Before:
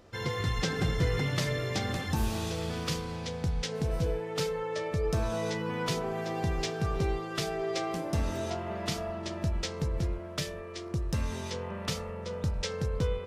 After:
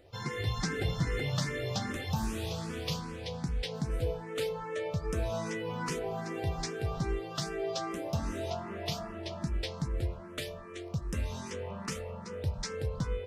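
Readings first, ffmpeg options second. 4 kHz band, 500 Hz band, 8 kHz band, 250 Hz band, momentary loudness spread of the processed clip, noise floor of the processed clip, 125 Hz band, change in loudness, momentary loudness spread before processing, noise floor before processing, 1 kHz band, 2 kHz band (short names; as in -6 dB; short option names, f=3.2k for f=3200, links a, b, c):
-3.0 dB, -3.0 dB, -2.5 dB, -3.0 dB, 6 LU, -44 dBFS, -3.0 dB, -3.0 dB, 5 LU, -40 dBFS, -3.0 dB, -3.0 dB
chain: -filter_complex "[0:a]asplit=2[a][b];[b]afreqshift=2.5[c];[a][c]amix=inputs=2:normalize=1"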